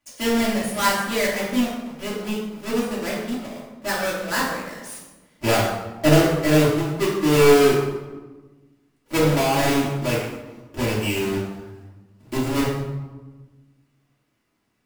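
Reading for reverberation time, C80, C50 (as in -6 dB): 1.3 s, 4.5 dB, 2.0 dB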